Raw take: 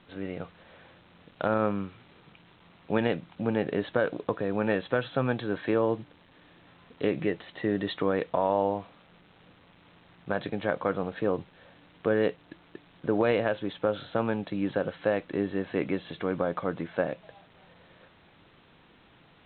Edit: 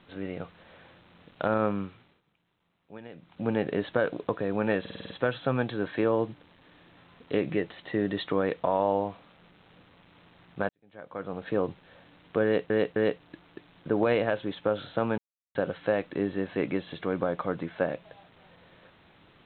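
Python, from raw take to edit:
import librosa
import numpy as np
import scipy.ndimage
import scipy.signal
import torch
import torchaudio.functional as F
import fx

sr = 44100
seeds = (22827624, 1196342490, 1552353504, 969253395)

y = fx.edit(x, sr, fx.fade_down_up(start_s=1.85, length_s=1.64, db=-18.5, fade_s=0.37),
    fx.stutter(start_s=4.8, slice_s=0.05, count=7),
    fx.fade_in_span(start_s=10.39, length_s=0.82, curve='qua'),
    fx.repeat(start_s=12.14, length_s=0.26, count=3),
    fx.silence(start_s=14.36, length_s=0.37), tone=tone)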